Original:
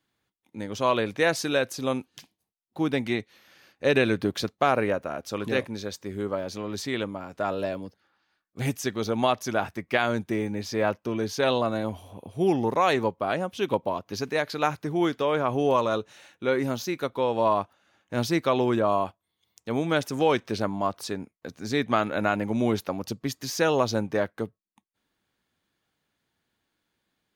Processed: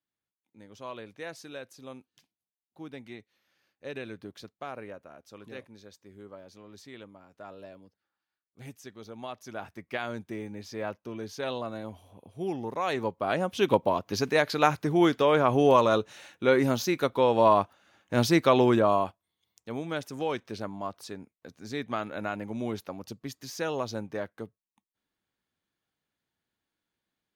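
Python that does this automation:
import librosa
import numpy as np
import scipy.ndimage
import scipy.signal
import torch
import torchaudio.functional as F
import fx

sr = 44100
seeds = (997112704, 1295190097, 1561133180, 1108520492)

y = fx.gain(x, sr, db=fx.line((9.21, -17.0), (9.8, -9.5), (12.72, -9.5), (13.56, 2.5), (18.66, 2.5), (19.83, -8.5)))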